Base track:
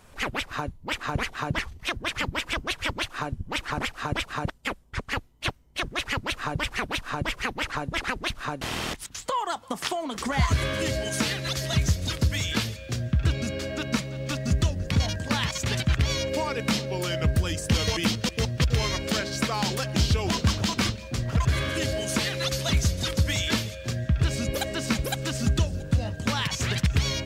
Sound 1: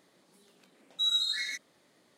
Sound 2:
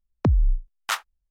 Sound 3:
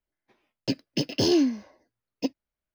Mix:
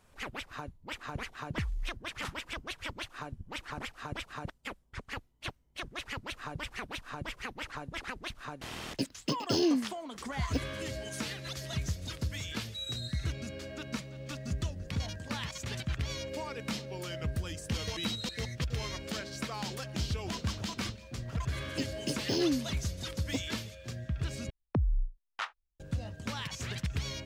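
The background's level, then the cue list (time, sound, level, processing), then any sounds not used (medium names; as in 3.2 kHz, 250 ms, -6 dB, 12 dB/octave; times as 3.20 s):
base track -11 dB
1.33 s: add 2 -15.5 dB + CVSD coder 64 kbps
8.31 s: add 3 -6 dB
11.75 s: add 1 -18 dB + treble shelf 3.5 kHz +11 dB
16.98 s: add 1 -12 dB
21.10 s: add 3 -8 dB
24.50 s: replace with 2 -9.5 dB + low-pass 3.6 kHz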